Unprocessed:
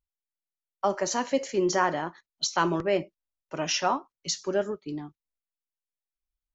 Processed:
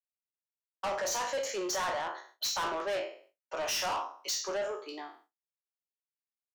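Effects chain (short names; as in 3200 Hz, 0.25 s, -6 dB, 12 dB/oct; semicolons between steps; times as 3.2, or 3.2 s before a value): spectral trails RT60 0.41 s; expander -53 dBFS; HPF 490 Hz 24 dB/oct; in parallel at 0 dB: compressor, threshold -44 dBFS, peak gain reduction 23 dB; on the sum: soft clip -29.5 dBFS, distortion -6 dB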